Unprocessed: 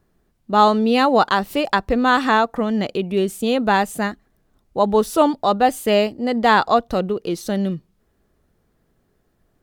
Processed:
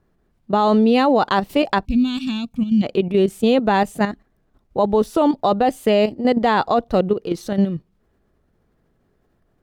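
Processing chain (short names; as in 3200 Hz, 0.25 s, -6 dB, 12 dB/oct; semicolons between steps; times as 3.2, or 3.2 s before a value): level quantiser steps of 10 dB; high shelf 4500 Hz -10 dB; spectral gain 1.85–2.83, 270–2200 Hz -26 dB; dynamic EQ 1400 Hz, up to -5 dB, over -36 dBFS, Q 1.3; gain +6.5 dB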